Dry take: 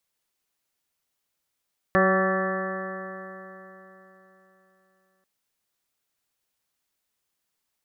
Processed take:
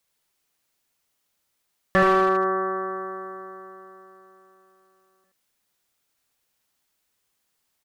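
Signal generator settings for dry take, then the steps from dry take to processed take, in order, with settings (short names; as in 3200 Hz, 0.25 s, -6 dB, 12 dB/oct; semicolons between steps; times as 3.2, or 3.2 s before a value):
stretched partials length 3.29 s, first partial 188 Hz, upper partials -1/2/-5/-17/-0.5/-6/-11.5/0/-13.5 dB, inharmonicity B 0.00082, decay 3.70 s, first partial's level -23 dB
in parallel at -5 dB: wavefolder -17.5 dBFS; on the sum: echo 77 ms -4.5 dB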